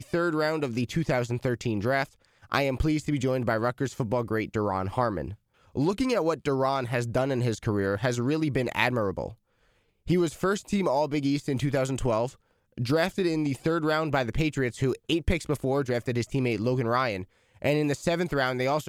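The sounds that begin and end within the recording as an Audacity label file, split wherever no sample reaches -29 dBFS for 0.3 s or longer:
2.520000	5.290000	sound
5.770000	9.280000	sound
10.080000	12.270000	sound
12.780000	17.220000	sound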